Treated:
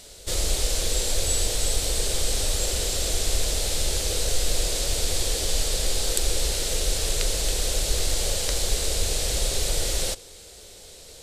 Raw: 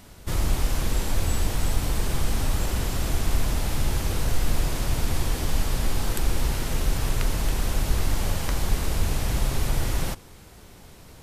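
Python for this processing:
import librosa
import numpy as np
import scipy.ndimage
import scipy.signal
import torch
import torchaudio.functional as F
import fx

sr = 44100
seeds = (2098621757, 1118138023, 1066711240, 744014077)

y = fx.graphic_eq(x, sr, hz=(125, 250, 500, 1000, 4000, 8000), db=(-8, -8, 12, -8, 10, 12))
y = y * 10.0 ** (-2.0 / 20.0)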